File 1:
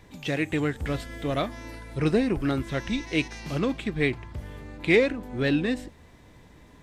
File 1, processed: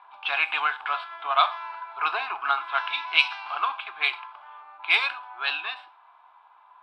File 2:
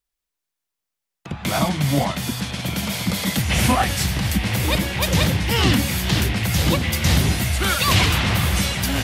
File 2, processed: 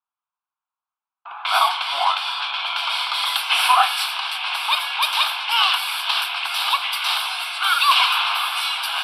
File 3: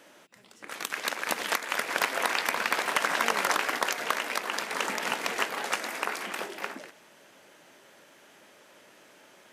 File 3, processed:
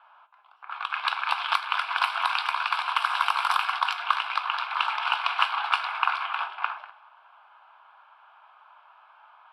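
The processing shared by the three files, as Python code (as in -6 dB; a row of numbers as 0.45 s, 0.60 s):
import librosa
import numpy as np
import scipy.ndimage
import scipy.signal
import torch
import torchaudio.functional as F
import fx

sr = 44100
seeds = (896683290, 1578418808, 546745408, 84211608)

y = scipy.signal.sosfilt(scipy.signal.cheby2(4, 60, 250.0, 'highpass', fs=sr, output='sos'), x)
y = fx.env_lowpass(y, sr, base_hz=1100.0, full_db=-22.0)
y = scipy.signal.sosfilt(scipy.signal.butter(4, 12000.0, 'lowpass', fs=sr, output='sos'), y)
y = fx.high_shelf(y, sr, hz=3600.0, db=-8.0)
y = fx.rider(y, sr, range_db=5, speed_s=2.0)
y = fx.fixed_phaser(y, sr, hz=1900.0, stages=6)
y = fx.rev_gated(y, sr, seeds[0], gate_ms=140, shape='falling', drr_db=11.5)
y = y * 10.0 ** (-3 / 20.0) / np.max(np.abs(y))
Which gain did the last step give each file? +14.5 dB, +9.5 dB, +8.5 dB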